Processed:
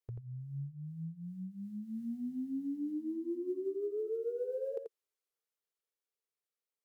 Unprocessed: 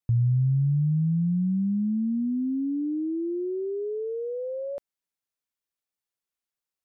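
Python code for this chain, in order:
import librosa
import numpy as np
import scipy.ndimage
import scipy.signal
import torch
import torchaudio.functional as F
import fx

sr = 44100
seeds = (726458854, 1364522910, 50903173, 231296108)

p1 = fx.doppler_pass(x, sr, speed_mps=7, closest_m=2.9, pass_at_s=2.52)
p2 = fx.low_shelf_res(p1, sr, hz=300.0, db=-11.5, q=3.0)
p3 = fx.over_compress(p2, sr, threshold_db=-46.0, ratio=-1.0)
p4 = p2 + F.gain(torch.from_numpy(p3), -2.5).numpy()
p5 = fx.formant_shift(p4, sr, semitones=-3)
p6 = p5 + fx.echo_single(p5, sr, ms=86, db=-5.5, dry=0)
y = F.gain(torch.from_numpy(p6), 3.0).numpy()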